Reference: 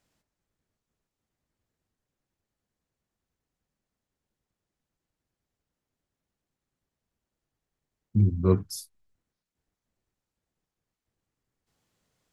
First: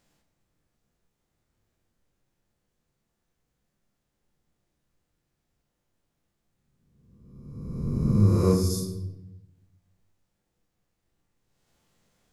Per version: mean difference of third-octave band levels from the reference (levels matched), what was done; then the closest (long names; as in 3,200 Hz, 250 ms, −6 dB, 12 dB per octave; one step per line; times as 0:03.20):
11.5 dB: peak hold with a rise ahead of every peak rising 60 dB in 1.52 s
rectangular room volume 310 cubic metres, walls mixed, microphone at 0.83 metres
in parallel at 0 dB: downward compressor, threshold −28 dBFS, peak gain reduction 16.5 dB
on the sum: level −5 dB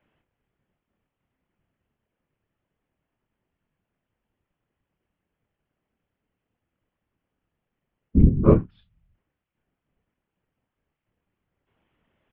4.5 dB: Butterworth low-pass 3,200 Hz 72 dB per octave
random phases in short frames
double-tracking delay 27 ms −9 dB
level +5.5 dB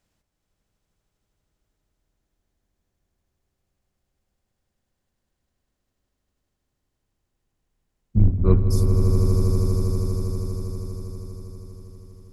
6.5 dB: sub-octave generator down 2 octaves, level −2 dB
low-shelf EQ 110 Hz +6 dB
on a send: echo that builds up and dies away 80 ms, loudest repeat 8, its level −9.5 dB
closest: second